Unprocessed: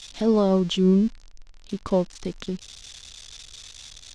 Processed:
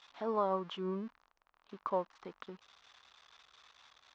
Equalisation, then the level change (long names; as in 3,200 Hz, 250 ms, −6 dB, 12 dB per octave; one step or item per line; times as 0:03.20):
resonant band-pass 1,100 Hz, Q 2.3
high-frequency loss of the air 87 metres
0.0 dB